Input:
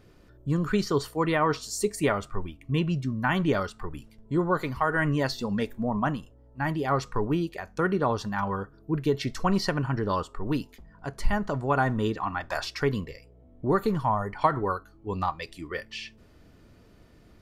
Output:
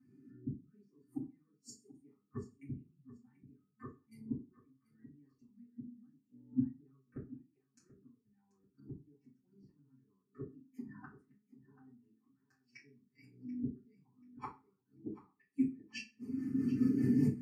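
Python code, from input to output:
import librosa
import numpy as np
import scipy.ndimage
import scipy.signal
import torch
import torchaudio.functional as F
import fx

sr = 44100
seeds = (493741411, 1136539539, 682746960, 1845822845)

y = fx.halfwave_gain(x, sr, db=-3.0, at=(6.97, 9.23))
y = fx.recorder_agc(y, sr, target_db=-14.0, rise_db_per_s=11.0, max_gain_db=30)
y = scipy.signal.sosfilt(scipy.signal.butter(4, 150.0, 'highpass', fs=sr, output='sos'), y)
y = fx.peak_eq(y, sr, hz=1500.0, db=-7.5, octaves=1.2)
y = fx.fixed_phaser(y, sr, hz=1500.0, stages=4)
y = fx.rotary_switch(y, sr, hz=0.9, then_hz=5.0, switch_at_s=12.04)
y = fx.gate_flip(y, sr, shuts_db=-33.0, range_db=-37)
y = fx.filter_lfo_notch(y, sr, shape='saw_up', hz=0.92, low_hz=430.0, high_hz=1700.0, q=1.8)
y = fx.echo_feedback(y, sr, ms=735, feedback_pct=31, wet_db=-12.0)
y = fx.rev_fdn(y, sr, rt60_s=0.43, lf_ratio=1.1, hf_ratio=0.9, size_ms=23.0, drr_db=-8.5)
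y = fx.spectral_expand(y, sr, expansion=1.5)
y = y * 10.0 ** (2.5 / 20.0)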